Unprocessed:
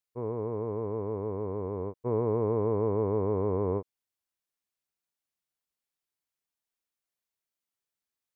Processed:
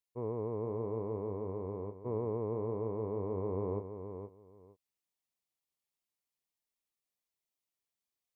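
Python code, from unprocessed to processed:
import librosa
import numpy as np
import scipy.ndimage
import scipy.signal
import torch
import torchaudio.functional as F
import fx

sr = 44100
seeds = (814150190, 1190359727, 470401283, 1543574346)

y = fx.peak_eq(x, sr, hz=1500.0, db=-11.5, octaves=0.26)
y = fx.echo_feedback(y, sr, ms=469, feedback_pct=15, wet_db=-10.0)
y = fx.rider(y, sr, range_db=5, speed_s=2.0)
y = F.gain(torch.from_numpy(y), -7.5).numpy()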